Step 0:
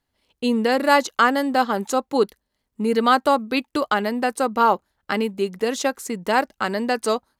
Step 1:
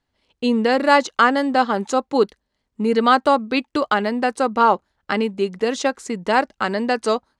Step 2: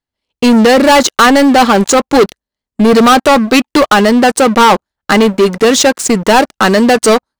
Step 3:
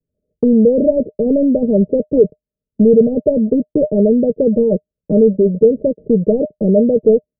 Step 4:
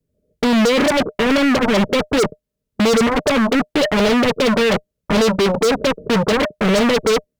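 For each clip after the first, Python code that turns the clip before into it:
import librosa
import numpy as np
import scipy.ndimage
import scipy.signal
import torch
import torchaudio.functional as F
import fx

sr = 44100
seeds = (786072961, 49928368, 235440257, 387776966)

y1 = scipy.signal.sosfilt(scipy.signal.bessel(8, 6300.0, 'lowpass', norm='mag', fs=sr, output='sos'), x)
y1 = y1 * librosa.db_to_amplitude(2.0)
y2 = fx.high_shelf(y1, sr, hz=6300.0, db=8.5)
y2 = fx.leveller(y2, sr, passes=5)
y2 = y2 * librosa.db_to_amplitude(-1.0)
y3 = scipy.signal.sosfilt(scipy.signal.cheby1(6, 9, 630.0, 'lowpass', fs=sr, output='sos'), y2)
y3 = fx.band_squash(y3, sr, depth_pct=40)
y3 = y3 * librosa.db_to_amplitude(1.5)
y4 = 10.0 ** (-6.5 / 20.0) * np.tanh(y3 / 10.0 ** (-6.5 / 20.0))
y4 = fx.cheby_harmonics(y4, sr, harmonics=(5, 7), levels_db=(-21, -9), full_scale_db=-6.5)
y4 = np.clip(y4, -10.0 ** (-20.0 / 20.0), 10.0 ** (-20.0 / 20.0))
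y4 = y4 * librosa.db_to_amplitude(7.5)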